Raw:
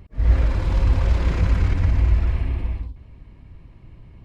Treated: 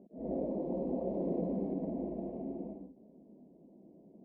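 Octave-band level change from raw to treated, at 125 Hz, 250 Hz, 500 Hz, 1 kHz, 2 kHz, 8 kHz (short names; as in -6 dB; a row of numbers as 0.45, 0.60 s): -26.0 dB, -2.0 dB, -0.5 dB, -11.5 dB, under -40 dB, n/a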